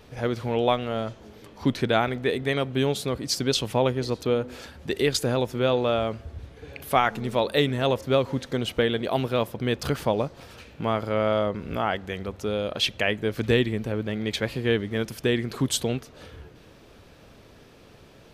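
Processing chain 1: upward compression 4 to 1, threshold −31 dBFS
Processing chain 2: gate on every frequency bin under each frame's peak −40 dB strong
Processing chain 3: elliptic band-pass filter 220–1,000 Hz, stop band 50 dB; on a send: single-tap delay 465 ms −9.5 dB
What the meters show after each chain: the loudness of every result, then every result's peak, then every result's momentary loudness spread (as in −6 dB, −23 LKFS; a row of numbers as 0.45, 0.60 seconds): −26.0, −26.0, −28.0 LKFS; −5.5, −5.5, −9.0 dBFS; 17, 10, 9 LU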